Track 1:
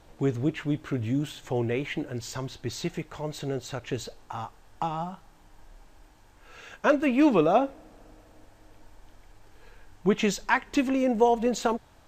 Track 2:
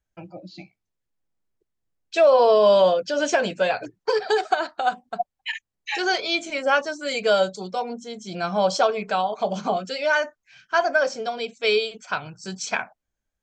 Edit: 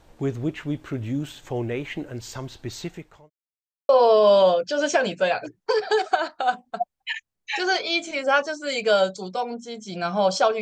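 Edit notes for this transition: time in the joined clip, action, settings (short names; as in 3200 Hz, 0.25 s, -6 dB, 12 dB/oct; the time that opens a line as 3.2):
track 1
2.77–3.3 fade out linear
3.3–3.89 mute
3.89 switch to track 2 from 2.28 s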